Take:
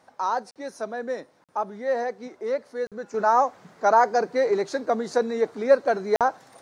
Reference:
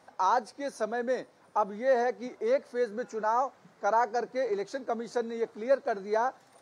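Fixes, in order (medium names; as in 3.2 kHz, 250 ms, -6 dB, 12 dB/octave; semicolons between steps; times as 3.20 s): interpolate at 0.51/1.44/2.87/6.16 s, 47 ms; gain correction -8 dB, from 3.14 s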